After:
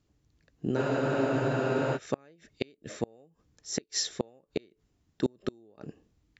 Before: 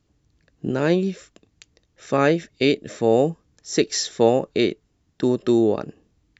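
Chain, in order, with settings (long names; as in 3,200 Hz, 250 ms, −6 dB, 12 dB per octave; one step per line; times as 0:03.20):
gate with flip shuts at −10 dBFS, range −34 dB
frozen spectrum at 0:00.79, 1.17 s
level −5 dB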